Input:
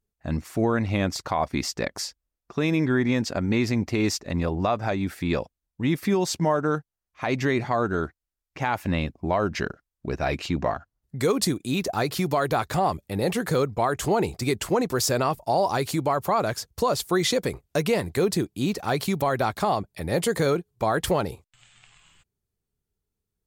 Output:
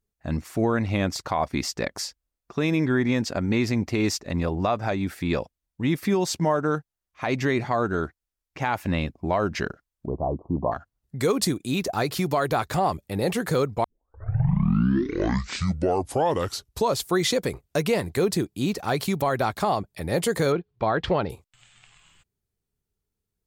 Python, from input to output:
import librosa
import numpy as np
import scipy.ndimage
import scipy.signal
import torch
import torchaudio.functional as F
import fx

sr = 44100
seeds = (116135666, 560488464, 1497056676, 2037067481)

y = fx.steep_lowpass(x, sr, hz=1100.0, slope=96, at=(10.06, 10.72))
y = fx.lowpass(y, sr, hz=4200.0, slope=24, at=(20.52, 21.3))
y = fx.edit(y, sr, fx.tape_start(start_s=13.84, length_s=3.22), tone=tone)